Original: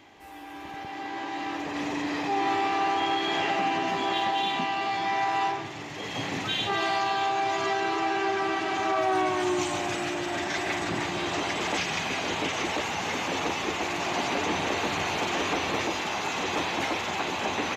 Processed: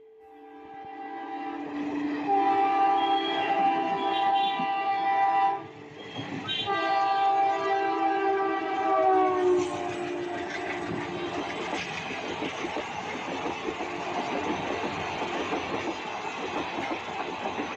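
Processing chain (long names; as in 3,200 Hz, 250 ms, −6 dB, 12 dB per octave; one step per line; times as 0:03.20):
steady tone 440 Hz −44 dBFS
harmonic generator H 4 −30 dB, 6 −19 dB, 8 −27 dB, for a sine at −16 dBFS
every bin expanded away from the loudest bin 1.5 to 1
level +1.5 dB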